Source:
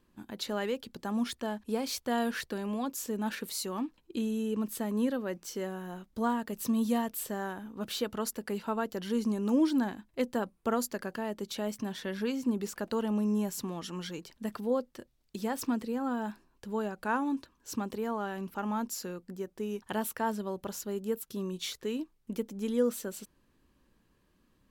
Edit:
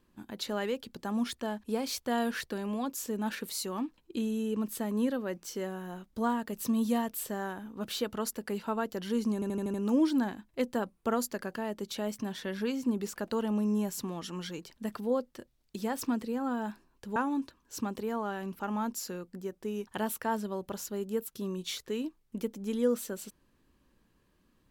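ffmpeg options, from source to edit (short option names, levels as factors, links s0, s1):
-filter_complex "[0:a]asplit=7[s0][s1][s2][s3][s4][s5][s6];[s0]atrim=end=9.422[s7];[s1]atrim=start=9.338:end=9.422[s8];[s2]atrim=start=9.338:end=9.422[s9];[s3]atrim=start=9.338:end=9.422[s10];[s4]atrim=start=9.338:end=9.422[s11];[s5]atrim=start=9.338:end=16.762[s12];[s6]atrim=start=17.108[s13];[s7][s8]acrossfade=d=0.004:c1=hsin:c2=hsin[s14];[s14][s9]acrossfade=d=0.004:c1=hsin:c2=hsin[s15];[s15][s10]acrossfade=d=0.004:c1=hsin:c2=hsin[s16];[s16][s11]acrossfade=d=0.004:c1=hsin:c2=hsin[s17];[s17][s12]acrossfade=d=0.004:c1=hsin:c2=hsin[s18];[s18][s13]acrossfade=d=0.004:c1=hsin:c2=hsin"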